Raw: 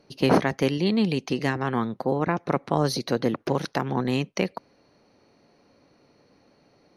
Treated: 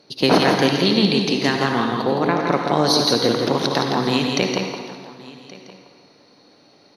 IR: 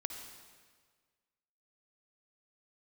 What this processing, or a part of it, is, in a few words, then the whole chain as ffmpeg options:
PA in a hall: -filter_complex "[0:a]highpass=f=190:p=1,equalizer=f=3.7k:t=o:w=0.3:g=7.5,equalizer=f=4.7k:t=o:w=0.83:g=5.5,aecho=1:1:166:0.562[a];[1:a]atrim=start_sample=2205[b];[a][b]afir=irnorm=-1:irlink=0,aecho=1:1:1124:0.0944,volume=6.5dB"

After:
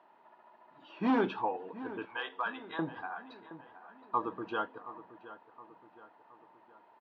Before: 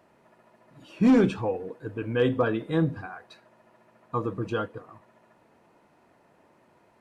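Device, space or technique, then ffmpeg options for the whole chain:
phone earpiece: -filter_complex "[0:a]asettb=1/sr,asplit=3[a][b][c];[a]atrim=end=2.054[d];[b]atrim=start=2.05:end=2.79,asetpts=PTS-STARTPTS,afade=t=in:d=0.004:c=qsin,afade=t=out:st=0.736:d=0.004:c=qsin,highpass=1.1k[e];[c]atrim=start=2.786[f];[d][e]acrossfade=d=0.004:c1=hsin:c2=qsin[g];[g][f]acrossfade=d=0.004:c1=qsin:c2=hsin,highpass=390,equalizer=f=500:t=q:w=4:g=-8,equalizer=f=910:t=q:w=4:g=9,equalizer=f=2.3k:t=q:w=4:g=-6,lowpass=f=3.7k:w=0.5412,lowpass=f=3.7k:w=1.3066,asplit=2[h][i];[i]adelay=720,lowpass=f=2.3k:p=1,volume=-14.5dB,asplit=2[j][k];[k]adelay=720,lowpass=f=2.3k:p=1,volume=0.5,asplit=2[l][m];[m]adelay=720,lowpass=f=2.3k:p=1,volume=0.5,asplit=2[n][o];[o]adelay=720,lowpass=f=2.3k:p=1,volume=0.5,asplit=2[p][q];[q]adelay=720,lowpass=f=2.3k:p=1,volume=0.5[r];[h][j][l][n][p][r]amix=inputs=6:normalize=0,volume=-2dB"

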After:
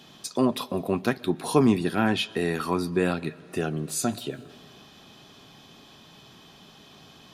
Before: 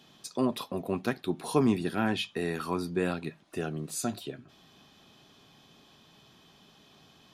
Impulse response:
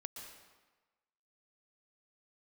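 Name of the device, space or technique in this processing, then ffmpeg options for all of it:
compressed reverb return: -filter_complex "[0:a]asplit=2[a][b];[1:a]atrim=start_sample=2205[c];[b][c]afir=irnorm=-1:irlink=0,acompressor=threshold=-45dB:ratio=5,volume=-3dB[d];[a][d]amix=inputs=2:normalize=0,volume=4.5dB"

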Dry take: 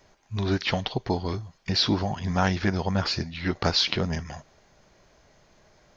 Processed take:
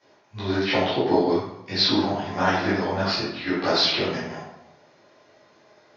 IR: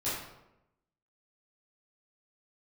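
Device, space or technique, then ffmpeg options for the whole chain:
supermarket ceiling speaker: -filter_complex "[0:a]highpass=260,lowpass=6.2k,lowpass=f=6.4k:w=0.5412,lowpass=f=6.4k:w=1.3066[a];[1:a]atrim=start_sample=2205[b];[a][b]afir=irnorm=-1:irlink=0,asettb=1/sr,asplit=3[c][d][e];[c]atrim=end=0.734[f];[d]atrim=start=0.73:end=1.4,asetpts=PTS-STARTPTS,afade=t=in:d=0.004:c=qsin,afade=t=out:st=0.666:d=0.004:c=qsin,equalizer=f=380:w=0.65:g=5[g];[e]atrim=start=1.396[h];[f][g]acrossfade=d=0.004:c1=hsin:c2=qsin[i];[i][h]acrossfade=d=0.004:c1=qsin:c2=hsin,volume=-1.5dB"

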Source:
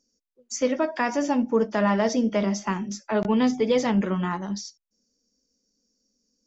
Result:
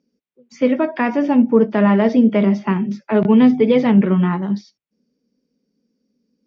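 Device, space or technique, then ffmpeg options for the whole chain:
guitar cabinet: -af "highpass=93,equalizer=f=160:t=q:w=4:g=8,equalizer=f=240:t=q:w=4:g=4,equalizer=f=400:t=q:w=4:g=5,equalizer=f=2.3k:t=q:w=4:g=4,lowpass=f=3.7k:w=0.5412,lowpass=f=3.7k:w=1.3066,lowshelf=f=350:g=5,volume=3dB"

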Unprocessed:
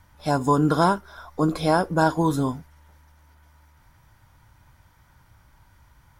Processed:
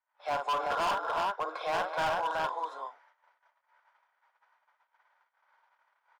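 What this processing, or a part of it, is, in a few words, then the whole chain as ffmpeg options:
walkie-talkie: -filter_complex "[0:a]highpass=f=530:w=0.5412,highpass=f=530:w=1.3066,asettb=1/sr,asplit=3[a][b][c];[a]atrim=end=1.654[d];[b]atrim=start=1.65:end=2.55,asetpts=PTS-STARTPTS,afade=t=in:d=0.004:c=qsin,afade=t=out:st=0.896:d=0.004:c=qsin,lowshelf=f=420:g=-5.5[e];[c]atrim=start=2.546[f];[d][e]acrossfade=d=0.004:c1=hsin:c2=qsin[g];[g][f]acrossfade=d=0.004:c1=qsin:c2=hsin,highpass=550,lowpass=2.3k,aecho=1:1:54|177|246|272|328|378:0.422|0.126|0.158|0.15|0.266|0.668,asoftclip=type=hard:threshold=-24.5dB,agate=range=-25dB:threshold=-60dB:ratio=16:detection=peak,volume=-2dB"

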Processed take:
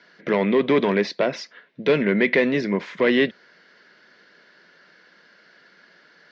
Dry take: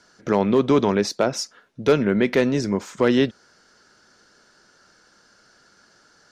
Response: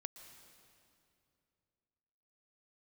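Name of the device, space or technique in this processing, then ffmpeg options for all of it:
overdrive pedal into a guitar cabinet: -filter_complex "[0:a]asplit=2[a][b];[b]highpass=f=720:p=1,volume=14dB,asoftclip=type=tanh:threshold=-7dB[c];[a][c]amix=inputs=2:normalize=0,lowpass=f=3.5k:p=1,volume=-6dB,highpass=100,equalizer=f=110:t=q:w=4:g=-10,equalizer=f=170:t=q:w=4:g=8,equalizer=f=820:t=q:w=4:g=-8,equalizer=f=1.3k:t=q:w=4:g=-9,equalizer=f=2k:t=q:w=4:g=7,lowpass=f=4.1k:w=0.5412,lowpass=f=4.1k:w=1.3066,volume=-1.5dB"

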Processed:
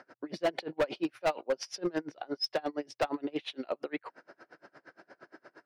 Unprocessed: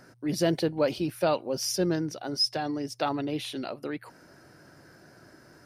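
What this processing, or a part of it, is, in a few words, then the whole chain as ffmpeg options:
helicopter radio: -af "highpass=400,lowpass=2.8k,aeval=exprs='val(0)*pow(10,-31*(0.5-0.5*cos(2*PI*8.6*n/s))/20)':c=same,asoftclip=type=hard:threshold=-30.5dB,volume=7.5dB"

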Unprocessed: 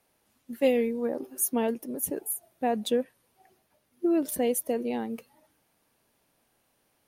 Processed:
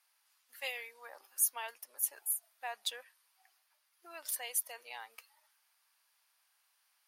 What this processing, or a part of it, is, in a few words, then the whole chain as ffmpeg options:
headphones lying on a table: -af "highpass=f=1k:w=0.5412,highpass=f=1k:w=1.3066,equalizer=f=4.8k:t=o:w=0.31:g=5.5,volume=-2dB"

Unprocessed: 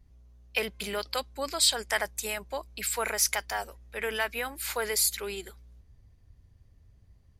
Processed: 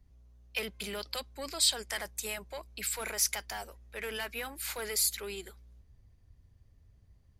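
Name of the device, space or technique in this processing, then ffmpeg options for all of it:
one-band saturation: -filter_complex "[0:a]acrossover=split=260|2300[a][b][c];[b]asoftclip=type=tanh:threshold=-33.5dB[d];[a][d][c]amix=inputs=3:normalize=0,volume=-3dB"

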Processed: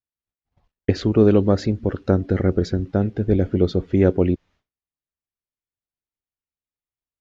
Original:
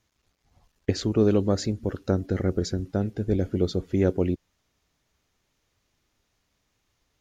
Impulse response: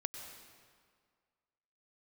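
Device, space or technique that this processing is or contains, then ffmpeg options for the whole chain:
hearing-loss simulation: -af "lowpass=3.4k,agate=range=-33dB:threshold=-52dB:ratio=3:detection=peak,volume=6dB"

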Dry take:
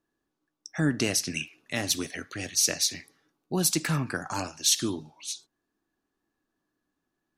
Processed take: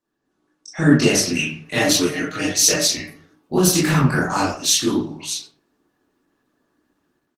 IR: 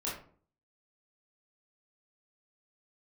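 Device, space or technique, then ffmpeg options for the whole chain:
far-field microphone of a smart speaker: -filter_complex "[0:a]asplit=3[a][b][c];[a]afade=t=out:st=1.58:d=0.02[d];[b]aecho=1:1:6.5:0.56,afade=t=in:st=1.58:d=0.02,afade=t=out:st=2.75:d=0.02[e];[c]afade=t=in:st=2.75:d=0.02[f];[d][e][f]amix=inputs=3:normalize=0[g];[1:a]atrim=start_sample=2205[h];[g][h]afir=irnorm=-1:irlink=0,highpass=96,dynaudnorm=f=200:g=3:m=10.5dB" -ar 48000 -c:a libopus -b:a 16k

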